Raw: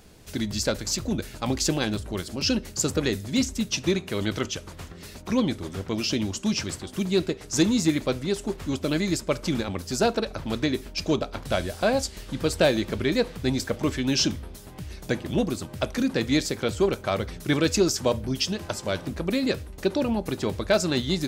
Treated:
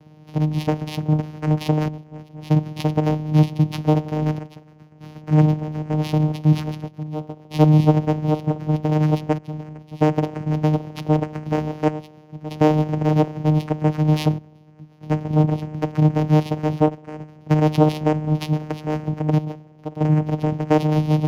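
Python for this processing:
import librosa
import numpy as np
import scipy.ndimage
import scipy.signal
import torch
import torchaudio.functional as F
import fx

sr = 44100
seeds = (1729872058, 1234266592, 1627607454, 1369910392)

p1 = fx.rev_spring(x, sr, rt60_s=2.3, pass_ms=(50,), chirp_ms=50, drr_db=15.0)
p2 = fx.step_gate(p1, sr, bpm=72, pattern='xxxxxxxxx...', floor_db=-12.0, edge_ms=4.5)
p3 = fx.sample_hold(p2, sr, seeds[0], rate_hz=5400.0, jitter_pct=0)
p4 = p2 + (p3 * librosa.db_to_amplitude(-9.5))
p5 = fx.vocoder(p4, sr, bands=4, carrier='saw', carrier_hz=153.0)
p6 = fx.running_max(p5, sr, window=3)
y = p6 * librosa.db_to_amplitude(5.0)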